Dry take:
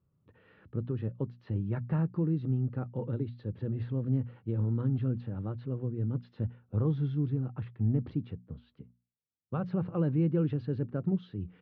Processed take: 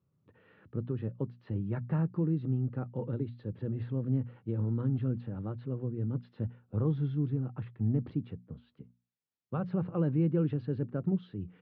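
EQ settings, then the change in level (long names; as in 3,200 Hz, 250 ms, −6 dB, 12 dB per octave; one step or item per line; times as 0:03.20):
high-pass filter 96 Hz
high-frequency loss of the air 97 metres
0.0 dB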